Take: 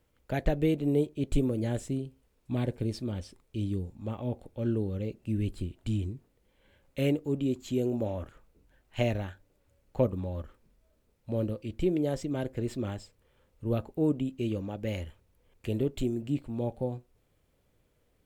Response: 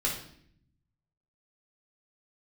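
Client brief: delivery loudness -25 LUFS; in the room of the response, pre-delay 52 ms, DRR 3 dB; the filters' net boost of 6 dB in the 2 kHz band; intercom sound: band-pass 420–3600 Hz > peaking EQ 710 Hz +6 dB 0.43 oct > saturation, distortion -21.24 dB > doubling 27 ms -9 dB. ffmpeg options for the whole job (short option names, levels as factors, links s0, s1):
-filter_complex "[0:a]equalizer=f=2000:t=o:g=8,asplit=2[s0][s1];[1:a]atrim=start_sample=2205,adelay=52[s2];[s1][s2]afir=irnorm=-1:irlink=0,volume=0.316[s3];[s0][s3]amix=inputs=2:normalize=0,highpass=420,lowpass=3600,equalizer=f=710:t=o:w=0.43:g=6,asoftclip=threshold=0.112,asplit=2[s4][s5];[s5]adelay=27,volume=0.355[s6];[s4][s6]amix=inputs=2:normalize=0,volume=2.99"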